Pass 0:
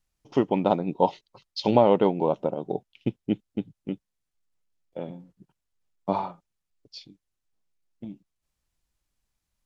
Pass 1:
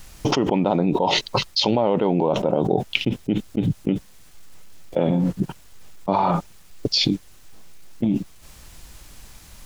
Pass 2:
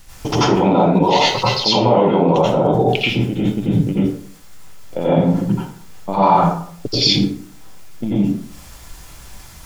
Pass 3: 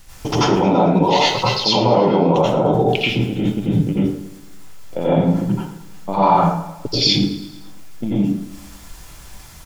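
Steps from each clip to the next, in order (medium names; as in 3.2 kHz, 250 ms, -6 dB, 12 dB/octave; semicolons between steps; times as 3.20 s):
level flattener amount 100%; trim -4.5 dB
plate-style reverb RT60 0.55 s, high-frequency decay 0.6×, pre-delay 75 ms, DRR -9 dB; trim -2.5 dB
feedback delay 110 ms, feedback 56%, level -17 dB; trim -1 dB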